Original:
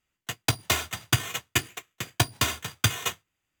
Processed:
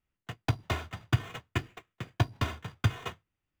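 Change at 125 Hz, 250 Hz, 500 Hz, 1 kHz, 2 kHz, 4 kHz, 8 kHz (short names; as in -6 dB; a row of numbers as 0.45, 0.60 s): +0.5, -2.0, -4.0, -5.5, -9.0, -13.0, -21.5 dB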